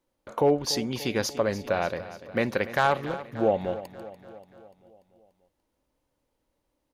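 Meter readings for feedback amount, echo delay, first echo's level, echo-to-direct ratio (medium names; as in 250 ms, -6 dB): 58%, 291 ms, -15.0 dB, -13.0 dB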